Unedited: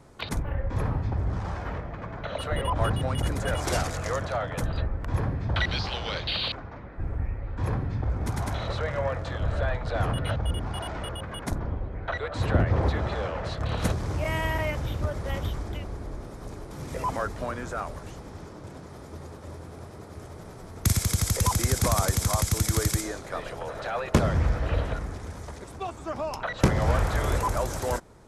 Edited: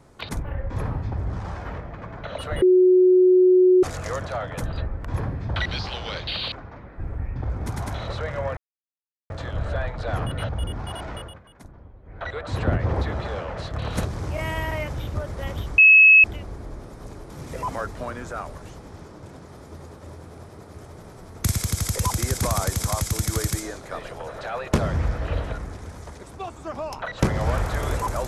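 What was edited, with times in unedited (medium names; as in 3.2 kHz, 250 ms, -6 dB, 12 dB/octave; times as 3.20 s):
2.62–3.83 s: bleep 367 Hz -11.5 dBFS
7.36–7.96 s: delete
9.17 s: insert silence 0.73 s
11.01–12.18 s: dip -15.5 dB, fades 0.29 s
15.65 s: add tone 2.58 kHz -8 dBFS 0.46 s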